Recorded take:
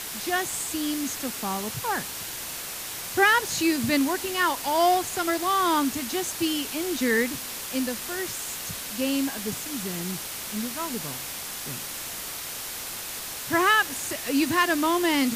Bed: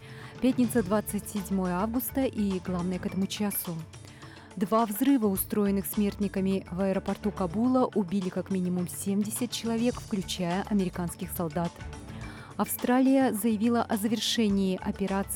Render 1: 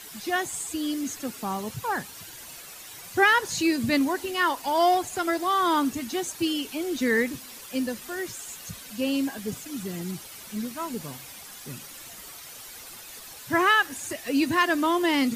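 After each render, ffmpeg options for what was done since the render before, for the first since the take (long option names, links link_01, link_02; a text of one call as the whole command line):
ffmpeg -i in.wav -af "afftdn=noise_reduction=11:noise_floor=-35" out.wav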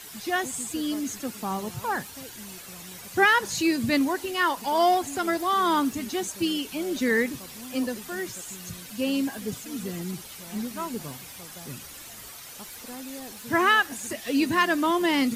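ffmpeg -i in.wav -i bed.wav -filter_complex "[1:a]volume=-17.5dB[link_01];[0:a][link_01]amix=inputs=2:normalize=0" out.wav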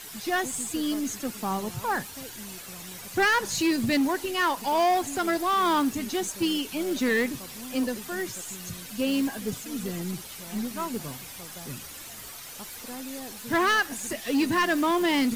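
ffmpeg -i in.wav -filter_complex "[0:a]asplit=2[link_01][link_02];[link_02]acrusher=bits=5:dc=4:mix=0:aa=0.000001,volume=-12dB[link_03];[link_01][link_03]amix=inputs=2:normalize=0,asoftclip=type=tanh:threshold=-18dB" out.wav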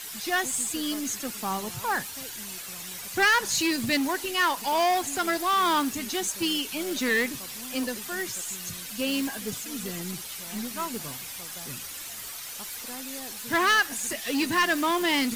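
ffmpeg -i in.wav -af "tiltshelf=frequency=970:gain=-4" out.wav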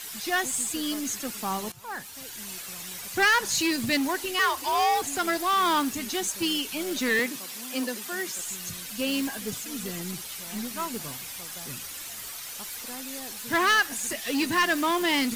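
ffmpeg -i in.wav -filter_complex "[0:a]asettb=1/sr,asplit=3[link_01][link_02][link_03];[link_01]atrim=end=4.394[link_04];[link_02]atrim=start=4.39:end=5.02,asetpts=PTS-STARTPTS,afade=type=in:duration=0.004:curve=qsin,afade=type=out:start_time=0.626:duration=0.004:curve=qsin,afreqshift=72[link_05];[link_03]atrim=start=5.016[link_06];[link_04][link_05]acrossfade=duration=0.004:curve1=hsin:curve2=qsin[link_07];[link_07][link_06]acrossfade=duration=0.004:curve1=qsin:curve2=hsin,asettb=1/sr,asplit=3[link_08][link_09][link_10];[link_08]atrim=end=7.194[link_11];[link_09]atrim=start=7.19:end=8.39,asetpts=PTS-STARTPTS,afade=type=in:duration=0.004:curve=qsin,afade=type=out:start_time=1.196:duration=0.004:curve=qsin,highpass=frequency=180:width=0.5412,highpass=frequency=180:width=1.3066[link_12];[link_10]atrim=start=8.386[link_13];[link_11][link_12]acrossfade=duration=0.004:curve1=hsin:curve2=qsin[link_14];[link_14][link_13]acrossfade=duration=0.004:curve1=qsin:curve2=hsin,asplit=2[link_15][link_16];[link_15]atrim=end=1.72,asetpts=PTS-STARTPTS,afade=type=out:start_time=1.716:duration=0.004:curve=hsin:silence=0.141254[link_17];[link_16]atrim=start=1.72,asetpts=PTS-STARTPTS,afade=type=in:duration=0.78:silence=0.141254[link_18];[link_17][link_18]concat=n=2:v=0:a=1" out.wav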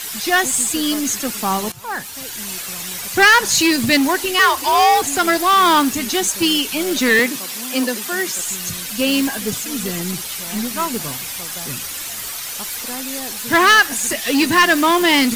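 ffmpeg -i in.wav -af "volume=10.5dB" out.wav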